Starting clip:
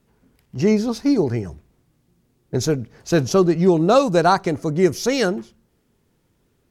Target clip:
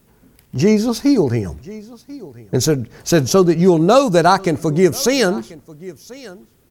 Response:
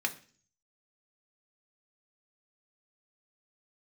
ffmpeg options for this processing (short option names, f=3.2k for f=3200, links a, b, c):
-filter_complex "[0:a]aecho=1:1:1037:0.0668,asplit=2[a][b];[b]acompressor=threshold=-26dB:ratio=6,volume=0dB[c];[a][c]amix=inputs=2:normalize=0,highshelf=f=10k:g=11.5,volume=1.5dB"